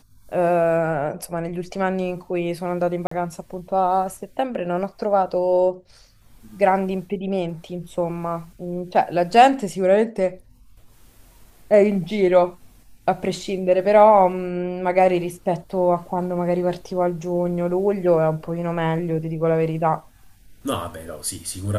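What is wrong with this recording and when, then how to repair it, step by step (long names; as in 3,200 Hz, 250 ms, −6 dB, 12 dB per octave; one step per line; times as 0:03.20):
0:03.07–0:03.11: drop-out 44 ms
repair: repair the gap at 0:03.07, 44 ms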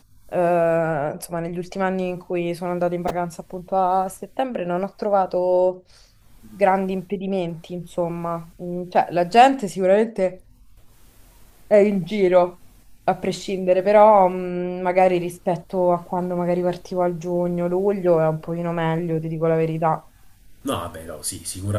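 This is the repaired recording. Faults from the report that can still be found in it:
none of them is left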